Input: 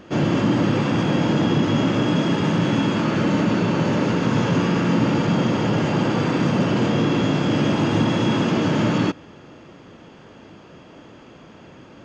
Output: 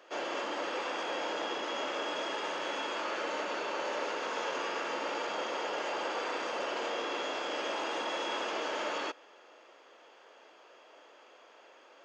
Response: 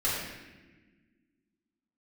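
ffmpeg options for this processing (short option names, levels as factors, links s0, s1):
-af "highpass=f=480:w=0.5412,highpass=f=480:w=1.3066,volume=0.398"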